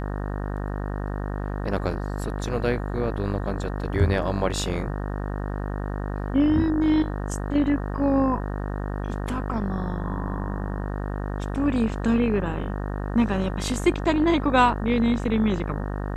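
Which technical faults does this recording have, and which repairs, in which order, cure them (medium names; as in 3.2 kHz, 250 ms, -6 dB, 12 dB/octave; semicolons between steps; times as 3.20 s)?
buzz 50 Hz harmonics 37 -29 dBFS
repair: de-hum 50 Hz, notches 37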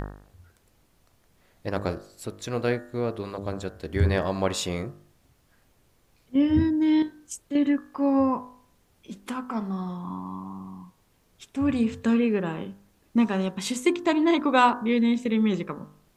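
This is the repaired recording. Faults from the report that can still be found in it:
nothing left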